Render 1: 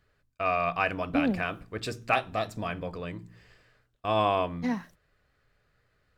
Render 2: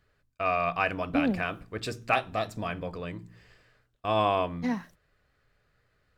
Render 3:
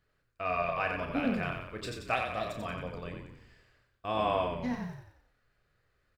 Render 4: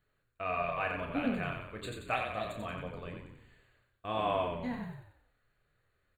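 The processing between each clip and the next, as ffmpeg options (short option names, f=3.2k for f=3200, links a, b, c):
-af anull
-filter_complex "[0:a]asplit=2[a][b];[b]adelay=33,volume=-7.5dB[c];[a][c]amix=inputs=2:normalize=0,asplit=7[d][e][f][g][h][i][j];[e]adelay=90,afreqshift=-35,volume=-5dB[k];[f]adelay=180,afreqshift=-70,volume=-11.4dB[l];[g]adelay=270,afreqshift=-105,volume=-17.8dB[m];[h]adelay=360,afreqshift=-140,volume=-24.1dB[n];[i]adelay=450,afreqshift=-175,volume=-30.5dB[o];[j]adelay=540,afreqshift=-210,volume=-36.9dB[p];[d][k][l][m][n][o][p]amix=inputs=7:normalize=0,volume=-6dB"
-af "flanger=delay=6.7:depth=4:regen=-63:speed=1.4:shape=sinusoidal,asuperstop=centerf=5500:order=20:qfactor=2.8,volume=2dB"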